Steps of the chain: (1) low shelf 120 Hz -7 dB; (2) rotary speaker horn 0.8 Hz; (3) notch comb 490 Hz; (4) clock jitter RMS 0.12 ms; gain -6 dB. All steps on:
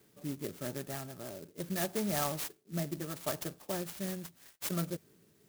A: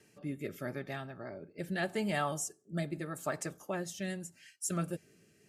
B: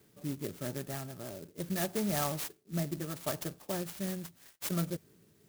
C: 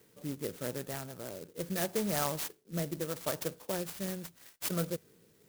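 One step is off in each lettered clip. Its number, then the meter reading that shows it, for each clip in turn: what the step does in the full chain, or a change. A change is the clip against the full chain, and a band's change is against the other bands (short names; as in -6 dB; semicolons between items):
4, 2 kHz band +4.5 dB; 1, 125 Hz band +2.5 dB; 3, 500 Hz band +1.5 dB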